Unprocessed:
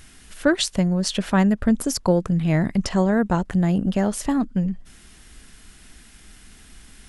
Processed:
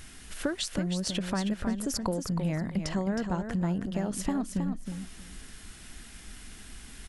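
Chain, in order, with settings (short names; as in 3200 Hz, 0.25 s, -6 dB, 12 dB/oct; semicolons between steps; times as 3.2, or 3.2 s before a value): compressor, threshold -28 dBFS, peak gain reduction 15 dB; feedback echo 0.317 s, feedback 19%, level -7 dB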